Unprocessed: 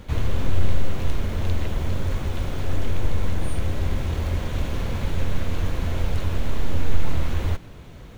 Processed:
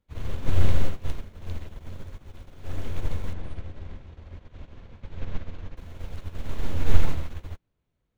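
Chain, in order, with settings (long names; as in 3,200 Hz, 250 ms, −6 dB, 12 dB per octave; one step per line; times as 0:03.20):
0:03.33–0:05.77: high-frequency loss of the air 120 metres
expander for the loud parts 2.5 to 1, over −34 dBFS
level +3.5 dB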